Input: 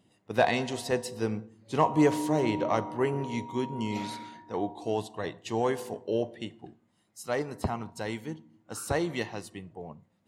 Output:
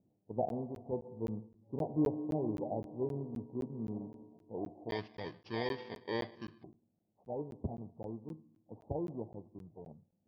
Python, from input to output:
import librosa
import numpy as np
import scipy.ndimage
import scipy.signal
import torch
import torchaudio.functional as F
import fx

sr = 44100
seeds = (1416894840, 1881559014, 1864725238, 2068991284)

y = fx.bit_reversed(x, sr, seeds[0], block=32)
y = fx.steep_lowpass(y, sr, hz=fx.steps((0.0, 810.0), (4.89, 4600.0), (6.62, 830.0)), slope=48)
y = fx.buffer_crackle(y, sr, first_s=0.49, period_s=0.26, block=512, kind='zero')
y = y * librosa.db_to_amplitude(-6.5)